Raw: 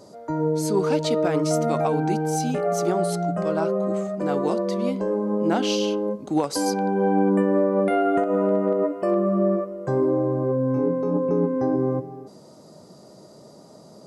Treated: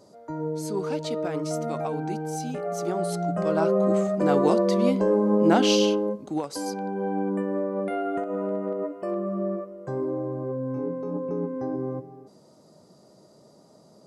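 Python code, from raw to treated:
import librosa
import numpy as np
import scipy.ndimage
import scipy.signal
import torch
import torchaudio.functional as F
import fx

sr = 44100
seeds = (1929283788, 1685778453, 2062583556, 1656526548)

y = fx.gain(x, sr, db=fx.line((2.7, -7.0), (3.88, 3.0), (5.82, 3.0), (6.44, -7.5)))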